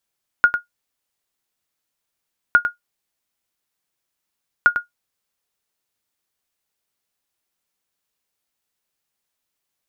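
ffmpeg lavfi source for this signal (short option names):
-f lavfi -i "aevalsrc='0.708*(sin(2*PI*1430*mod(t,2.11))*exp(-6.91*mod(t,2.11)/0.13)+0.355*sin(2*PI*1430*max(mod(t,2.11)-0.1,0))*exp(-6.91*max(mod(t,2.11)-0.1,0)/0.13))':d=6.33:s=44100"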